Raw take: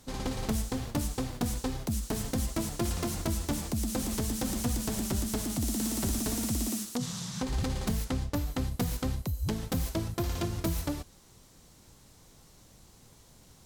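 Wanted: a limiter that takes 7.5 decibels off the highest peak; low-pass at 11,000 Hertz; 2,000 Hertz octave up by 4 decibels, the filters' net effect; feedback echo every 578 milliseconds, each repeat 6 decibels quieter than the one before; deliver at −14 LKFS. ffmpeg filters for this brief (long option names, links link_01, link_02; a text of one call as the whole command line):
ffmpeg -i in.wav -af "lowpass=11000,equalizer=frequency=2000:width_type=o:gain=5,alimiter=level_in=2.5dB:limit=-24dB:level=0:latency=1,volume=-2.5dB,aecho=1:1:578|1156|1734|2312|2890|3468:0.501|0.251|0.125|0.0626|0.0313|0.0157,volume=21dB" out.wav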